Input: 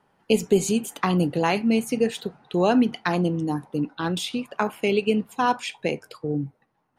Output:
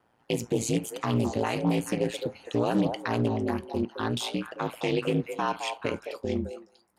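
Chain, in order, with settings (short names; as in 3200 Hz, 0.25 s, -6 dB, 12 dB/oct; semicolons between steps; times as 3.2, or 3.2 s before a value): HPF 81 Hz 24 dB/oct; limiter -15 dBFS, peak gain reduction 8 dB; ring modulator 57 Hz; on a send: delay with a stepping band-pass 0.214 s, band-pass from 650 Hz, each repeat 1.4 oct, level -3.5 dB; on the sum: Doppler distortion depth 0.23 ms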